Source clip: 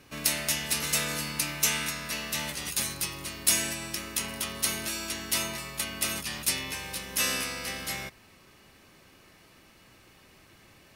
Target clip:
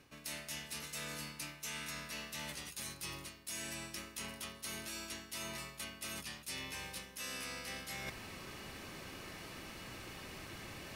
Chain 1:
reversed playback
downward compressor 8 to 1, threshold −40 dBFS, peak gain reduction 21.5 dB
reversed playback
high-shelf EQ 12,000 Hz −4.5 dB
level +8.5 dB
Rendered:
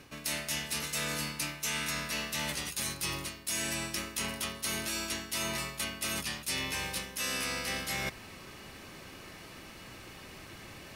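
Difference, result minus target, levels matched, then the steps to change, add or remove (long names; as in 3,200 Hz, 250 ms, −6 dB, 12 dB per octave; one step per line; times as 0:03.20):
downward compressor: peak gain reduction −9.5 dB
change: downward compressor 8 to 1, threshold −51 dBFS, peak gain reduction 31 dB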